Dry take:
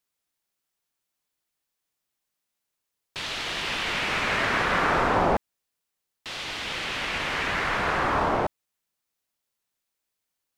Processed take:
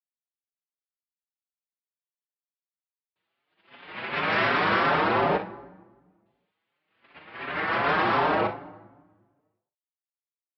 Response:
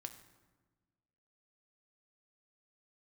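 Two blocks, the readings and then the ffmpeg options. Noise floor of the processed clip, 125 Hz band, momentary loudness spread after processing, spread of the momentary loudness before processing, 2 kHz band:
under -85 dBFS, -2.0 dB, 16 LU, 10 LU, -1.5 dB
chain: -filter_complex "[0:a]agate=range=-58dB:threshold=-24dB:ratio=16:detection=peak,aemphasis=mode=reproduction:type=75fm,acompressor=threshold=-26dB:ratio=6,aresample=11025,asoftclip=type=tanh:threshold=-32dB,aresample=44100,highpass=140,lowpass=4.1k,aecho=1:1:39|59:0.299|0.251,asplit=2[a][b];[1:a]atrim=start_sample=2205[c];[b][c]afir=irnorm=-1:irlink=0,volume=9dB[d];[a][d]amix=inputs=2:normalize=0,asplit=2[e][f];[f]adelay=5.5,afreqshift=2.7[g];[e][g]amix=inputs=2:normalize=1,volume=6.5dB"

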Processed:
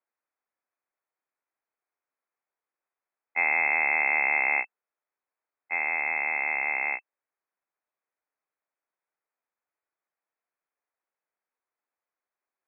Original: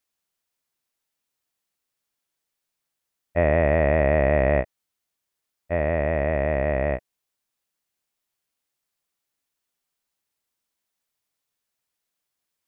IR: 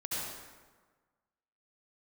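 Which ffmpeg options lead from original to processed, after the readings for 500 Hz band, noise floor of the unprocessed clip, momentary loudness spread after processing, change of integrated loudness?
-21.5 dB, -83 dBFS, 10 LU, -2.0 dB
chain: -filter_complex "[0:a]highpass=49,lowpass=f=2.3k:t=q:w=0.5098,lowpass=f=2.3k:t=q:w=0.6013,lowpass=f=2.3k:t=q:w=0.9,lowpass=f=2.3k:t=q:w=2.563,afreqshift=-2700,acrossover=split=230 2100:gain=0.1 1 0.158[a][b][c];[a][b][c]amix=inputs=3:normalize=0"

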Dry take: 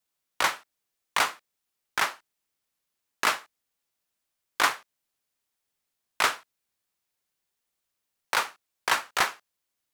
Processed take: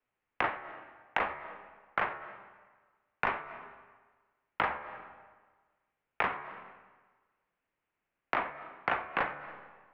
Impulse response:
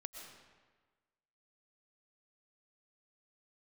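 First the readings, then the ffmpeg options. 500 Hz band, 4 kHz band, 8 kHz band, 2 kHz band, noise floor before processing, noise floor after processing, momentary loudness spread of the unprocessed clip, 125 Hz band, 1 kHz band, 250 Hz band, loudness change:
-1.0 dB, -17.0 dB, under -35 dB, -6.5 dB, -83 dBFS, under -85 dBFS, 10 LU, +3.0 dB, -4.5 dB, 0.0 dB, -7.5 dB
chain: -filter_complex "[0:a]highpass=f=200:t=q:w=0.5412,highpass=f=200:t=q:w=1.307,lowpass=f=2.7k:t=q:w=0.5176,lowpass=f=2.7k:t=q:w=0.7071,lowpass=f=2.7k:t=q:w=1.932,afreqshift=-220,bandreject=f=73.31:t=h:w=4,bandreject=f=146.62:t=h:w=4,bandreject=f=219.93:t=h:w=4,bandreject=f=293.24:t=h:w=4,bandreject=f=366.55:t=h:w=4,bandreject=f=439.86:t=h:w=4,bandreject=f=513.17:t=h:w=4,bandreject=f=586.48:t=h:w=4,bandreject=f=659.79:t=h:w=4,bandreject=f=733.1:t=h:w=4,bandreject=f=806.41:t=h:w=4,bandreject=f=879.72:t=h:w=4,bandreject=f=953.03:t=h:w=4,bandreject=f=1.02634k:t=h:w=4,bandreject=f=1.09965k:t=h:w=4,bandreject=f=1.17296k:t=h:w=4,bandreject=f=1.24627k:t=h:w=4,bandreject=f=1.31958k:t=h:w=4,bandreject=f=1.39289k:t=h:w=4,bandreject=f=1.4662k:t=h:w=4,bandreject=f=1.53951k:t=h:w=4,bandreject=f=1.61282k:t=h:w=4,bandreject=f=1.68613k:t=h:w=4,bandreject=f=1.75944k:t=h:w=4,bandreject=f=1.83275k:t=h:w=4,bandreject=f=1.90606k:t=h:w=4,bandreject=f=1.97937k:t=h:w=4,bandreject=f=2.05268k:t=h:w=4,bandreject=f=2.12599k:t=h:w=4,bandreject=f=2.1993k:t=h:w=4,bandreject=f=2.27261k:t=h:w=4,bandreject=f=2.34592k:t=h:w=4,bandreject=f=2.41923k:t=h:w=4,acontrast=35,asplit=2[a][b];[1:a]atrim=start_sample=2205,highshelf=f=6.8k:g=-9,adelay=88[c];[b][c]afir=irnorm=-1:irlink=0,volume=-15dB[d];[a][d]amix=inputs=2:normalize=0,acompressor=threshold=-29dB:ratio=4"

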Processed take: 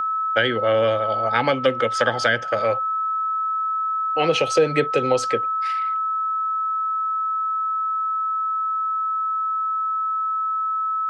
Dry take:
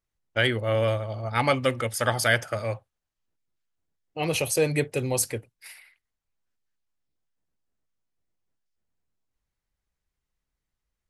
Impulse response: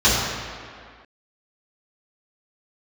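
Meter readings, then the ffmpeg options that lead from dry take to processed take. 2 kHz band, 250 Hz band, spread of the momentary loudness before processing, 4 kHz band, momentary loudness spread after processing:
+4.0 dB, +3.0 dB, 9 LU, +4.0 dB, 4 LU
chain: -filter_complex "[0:a]highpass=220,equalizer=f=500:t=q:w=4:g=8,equalizer=f=820:t=q:w=4:g=5,equalizer=f=1.6k:t=q:w=4:g=9,equalizer=f=3.2k:t=q:w=4:g=7,lowpass=f=6k:w=0.5412,lowpass=f=6k:w=1.3066,aeval=exprs='val(0)+0.0447*sin(2*PI*1300*n/s)':c=same,acrossover=split=310[a][b];[b]acompressor=threshold=-23dB:ratio=10[c];[a][c]amix=inputs=2:normalize=0,volume=6.5dB"

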